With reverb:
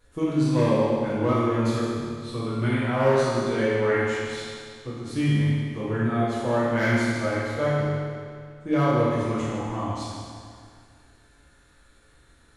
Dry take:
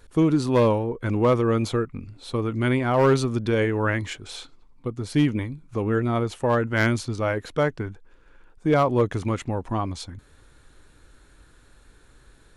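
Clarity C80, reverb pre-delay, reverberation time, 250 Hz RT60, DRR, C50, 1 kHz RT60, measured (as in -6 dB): -1.0 dB, 6 ms, 2.1 s, 2.1 s, -10.0 dB, -3.5 dB, 2.1 s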